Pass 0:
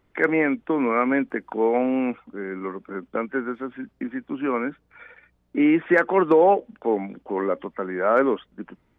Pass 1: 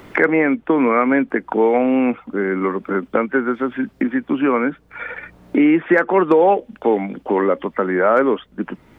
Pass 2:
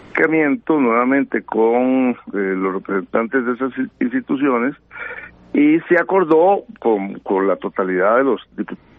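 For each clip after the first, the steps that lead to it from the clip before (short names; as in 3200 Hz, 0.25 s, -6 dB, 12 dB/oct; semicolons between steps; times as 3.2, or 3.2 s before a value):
three-band squash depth 70%; gain +5.5 dB
gain +1 dB; MP3 32 kbps 44100 Hz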